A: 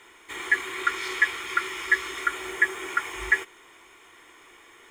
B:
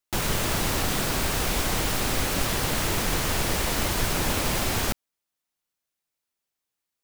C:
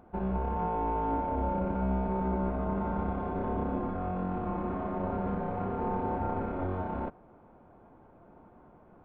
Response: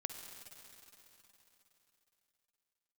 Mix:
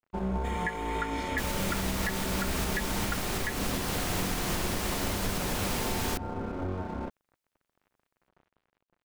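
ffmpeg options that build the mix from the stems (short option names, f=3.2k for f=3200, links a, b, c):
-filter_complex "[0:a]adelay=150,volume=-7dB[a];[1:a]adelay=1250,volume=-3.5dB[b];[2:a]adynamicequalizer=threshold=0.00447:dfrequency=750:dqfactor=1.4:tfrequency=750:tqfactor=1.4:attack=5:release=100:ratio=0.375:range=2.5:mode=cutabove:tftype=bell,aeval=exprs='sgn(val(0))*max(abs(val(0))-0.00335,0)':c=same,volume=1.5dB[c];[a][b][c]amix=inputs=3:normalize=0,alimiter=limit=-19.5dB:level=0:latency=1:release=301"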